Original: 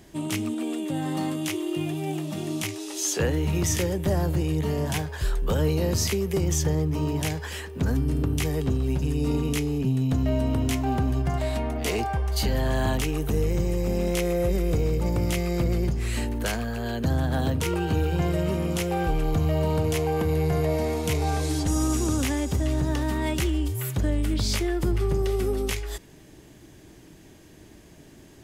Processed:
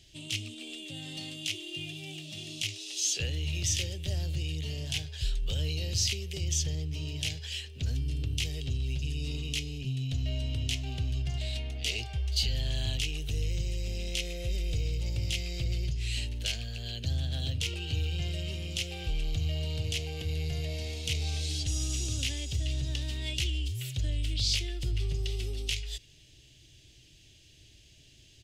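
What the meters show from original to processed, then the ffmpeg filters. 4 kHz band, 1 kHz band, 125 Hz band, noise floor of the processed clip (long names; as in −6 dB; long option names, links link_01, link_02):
+3.0 dB, −22.5 dB, −6.5 dB, −57 dBFS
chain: -af "firequalizer=gain_entry='entry(120,0);entry(180,-14);entry(620,-12);entry(990,-23);entry(2800,9);entry(4100,8);entry(12000,-9)':delay=0.05:min_phase=1,volume=-5dB"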